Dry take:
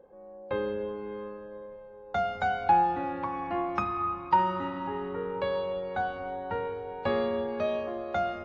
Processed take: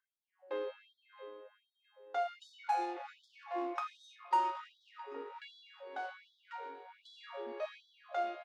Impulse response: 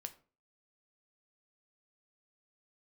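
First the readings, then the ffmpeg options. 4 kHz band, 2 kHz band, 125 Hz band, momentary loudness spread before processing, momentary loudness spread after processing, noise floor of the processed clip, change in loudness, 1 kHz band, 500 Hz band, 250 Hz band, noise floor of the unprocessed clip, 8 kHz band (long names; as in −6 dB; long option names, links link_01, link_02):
−7.0 dB, −11.0 dB, below −40 dB, 14 LU, 19 LU, below −85 dBFS, −9.5 dB, −9.5 dB, −12.0 dB, −14.0 dB, −48 dBFS, can't be measured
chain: -filter_complex "[0:a]acrossover=split=1500[link_01][link_02];[link_01]adynamicsmooth=sensitivity=7:basefreq=910[link_03];[link_02]aecho=1:1:668|1336|2004|2672:0.282|0.104|0.0386|0.0143[link_04];[link_03][link_04]amix=inputs=2:normalize=0[link_05];[1:a]atrim=start_sample=2205,asetrate=31311,aresample=44100[link_06];[link_05][link_06]afir=irnorm=-1:irlink=0,afftfilt=real='re*gte(b*sr/1024,250*pow(3300/250,0.5+0.5*sin(2*PI*1.3*pts/sr)))':imag='im*gte(b*sr/1024,250*pow(3300/250,0.5+0.5*sin(2*PI*1.3*pts/sr)))':win_size=1024:overlap=0.75,volume=-5.5dB"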